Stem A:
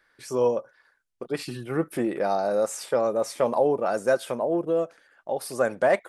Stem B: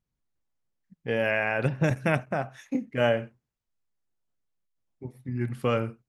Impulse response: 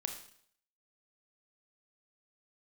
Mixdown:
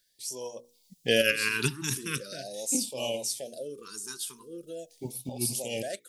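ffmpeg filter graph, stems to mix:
-filter_complex "[0:a]bandreject=frequency=60:width_type=h:width=6,bandreject=frequency=120:width_type=h:width=6,bandreject=frequency=180:width_type=h:width=6,bandreject=frequency=240:width_type=h:width=6,bandreject=frequency=300:width_type=h:width=6,bandreject=frequency=360:width_type=h:width=6,bandreject=frequency=420:width_type=h:width=6,bandreject=frequency=480:width_type=h:width=6,volume=-16dB,asplit=2[link_01][link_02];[1:a]equalizer=frequency=69:width_type=o:width=1.4:gain=-13.5,dynaudnorm=framelen=120:gausssize=9:maxgain=9dB,volume=-5dB[link_03];[link_02]apad=whole_len=268317[link_04];[link_03][link_04]sidechaincompress=threshold=-51dB:ratio=5:attack=5.1:release=128[link_05];[link_01][link_05]amix=inputs=2:normalize=0,aexciter=amount=8.4:drive=7.1:freq=3100,afftfilt=real='re*(1-between(b*sr/1024,600*pow(1600/600,0.5+0.5*sin(2*PI*0.42*pts/sr))/1.41,600*pow(1600/600,0.5+0.5*sin(2*PI*0.42*pts/sr))*1.41))':imag='im*(1-between(b*sr/1024,600*pow(1600/600,0.5+0.5*sin(2*PI*0.42*pts/sr))/1.41,600*pow(1600/600,0.5+0.5*sin(2*PI*0.42*pts/sr))*1.41))':win_size=1024:overlap=0.75"

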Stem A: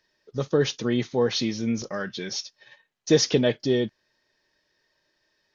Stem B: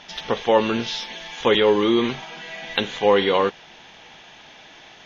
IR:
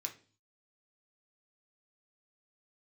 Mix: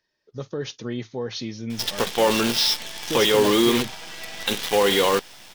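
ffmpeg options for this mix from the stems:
-filter_complex "[0:a]equalizer=frequency=110:width=7.1:gain=5.5,alimiter=limit=-14dB:level=0:latency=1:release=82,volume=-5.5dB[link_01];[1:a]lowpass=frequency=5300:width_type=q:width=5.5,alimiter=limit=-9.5dB:level=0:latency=1:release=39,acrusher=bits=5:dc=4:mix=0:aa=0.000001,adelay=1700,volume=0.5dB[link_02];[link_01][link_02]amix=inputs=2:normalize=0"

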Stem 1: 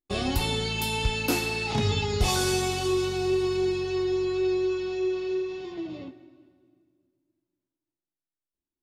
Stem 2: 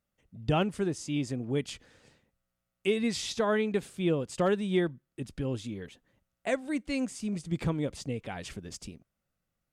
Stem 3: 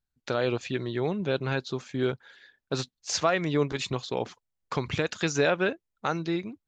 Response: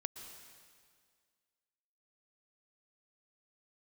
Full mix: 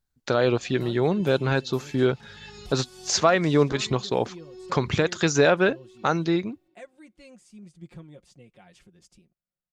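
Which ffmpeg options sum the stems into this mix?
-filter_complex "[0:a]equalizer=frequency=320:width=0.3:gain=-5.5,adelay=450,volume=-12dB[link_01];[1:a]adelay=300,volume=-16dB[link_02];[2:a]acontrast=37,equalizer=frequency=2600:width=1.6:gain=-3.5,volume=0.5dB,asplit=2[link_03][link_04];[link_04]apad=whole_len=409053[link_05];[link_01][link_05]sidechaincompress=threshold=-31dB:ratio=8:attack=16:release=443[link_06];[link_06][link_02]amix=inputs=2:normalize=0,aecho=1:1:5.6:0.66,alimiter=level_in=8.5dB:limit=-24dB:level=0:latency=1:release=435,volume=-8.5dB,volume=0dB[link_07];[link_03][link_07]amix=inputs=2:normalize=0"

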